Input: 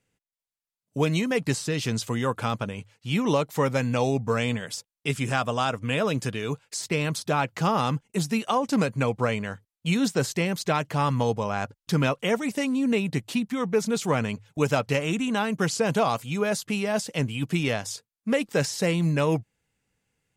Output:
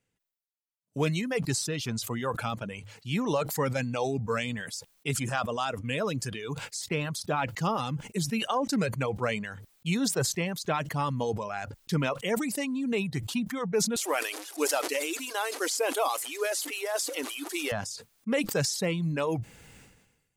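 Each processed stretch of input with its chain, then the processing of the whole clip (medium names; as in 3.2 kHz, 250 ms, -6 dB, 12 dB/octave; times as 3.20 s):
13.96–17.72 s: one-bit delta coder 64 kbps, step -31.5 dBFS + brick-wall FIR high-pass 270 Hz + treble shelf 7 kHz +10.5 dB
whole clip: reverb removal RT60 1.7 s; decay stretcher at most 53 dB/s; trim -4 dB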